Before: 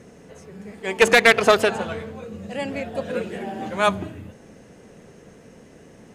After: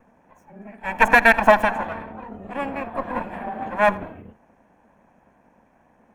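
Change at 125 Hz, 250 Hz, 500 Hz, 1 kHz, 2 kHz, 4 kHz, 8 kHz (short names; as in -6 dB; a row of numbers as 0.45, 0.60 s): -3.5 dB, -0.5 dB, -2.5 dB, +4.5 dB, +1.5 dB, -10.5 dB, under -10 dB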